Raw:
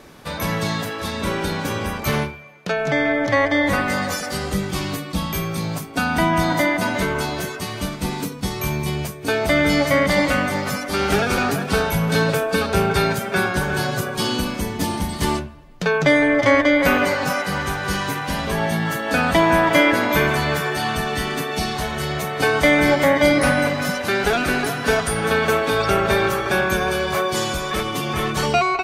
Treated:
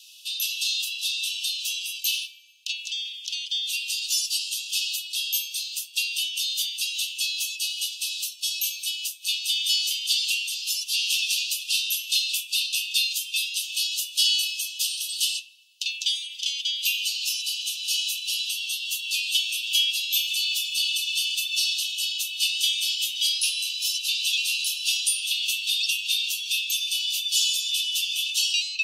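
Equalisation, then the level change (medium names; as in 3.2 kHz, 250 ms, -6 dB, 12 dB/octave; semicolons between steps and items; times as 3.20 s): Chebyshev high-pass 2.6 kHz, order 10; treble shelf 11 kHz -6 dB; +7.5 dB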